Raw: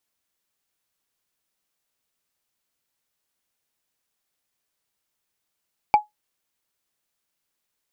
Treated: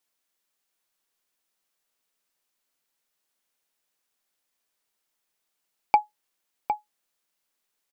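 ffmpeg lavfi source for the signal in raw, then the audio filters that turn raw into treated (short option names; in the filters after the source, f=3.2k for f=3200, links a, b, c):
-f lavfi -i "aevalsrc='0.447*pow(10,-3*t/0.15)*sin(2*PI*842*t)+0.119*pow(10,-3*t/0.044)*sin(2*PI*2321.4*t)+0.0316*pow(10,-3*t/0.02)*sin(2*PI*4550.2*t)+0.00841*pow(10,-3*t/0.011)*sin(2*PI*7521.6*t)+0.00224*pow(10,-3*t/0.007)*sin(2*PI*11232.3*t)':d=0.45:s=44100"
-filter_complex "[0:a]equalizer=f=78:t=o:w=1.9:g=-12.5,asplit=2[a][b];[b]adelay=758,volume=-7dB,highshelf=f=4k:g=-17.1[c];[a][c]amix=inputs=2:normalize=0"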